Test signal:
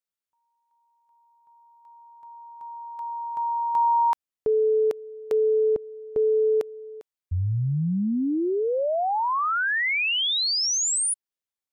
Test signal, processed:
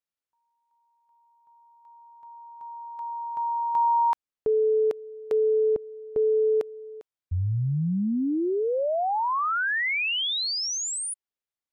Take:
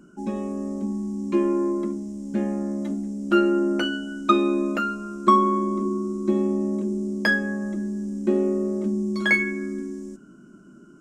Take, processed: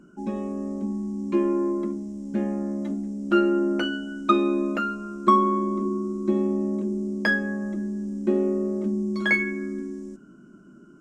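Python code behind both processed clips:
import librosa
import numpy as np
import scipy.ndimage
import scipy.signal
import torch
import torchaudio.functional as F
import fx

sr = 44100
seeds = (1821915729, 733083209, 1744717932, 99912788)

y = fx.high_shelf(x, sr, hz=5800.0, db=-8.0)
y = y * 10.0 ** (-1.0 / 20.0)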